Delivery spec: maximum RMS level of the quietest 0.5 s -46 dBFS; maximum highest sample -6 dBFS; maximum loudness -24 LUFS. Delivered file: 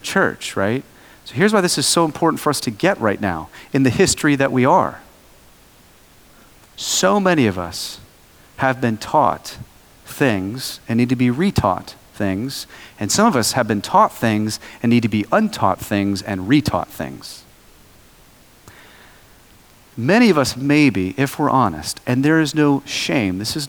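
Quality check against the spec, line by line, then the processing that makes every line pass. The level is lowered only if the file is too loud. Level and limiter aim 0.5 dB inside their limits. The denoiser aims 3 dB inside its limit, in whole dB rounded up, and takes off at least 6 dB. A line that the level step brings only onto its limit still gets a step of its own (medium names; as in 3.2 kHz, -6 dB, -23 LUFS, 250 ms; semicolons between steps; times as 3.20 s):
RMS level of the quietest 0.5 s -49 dBFS: pass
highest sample -2.0 dBFS: fail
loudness -18.0 LUFS: fail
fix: trim -6.5 dB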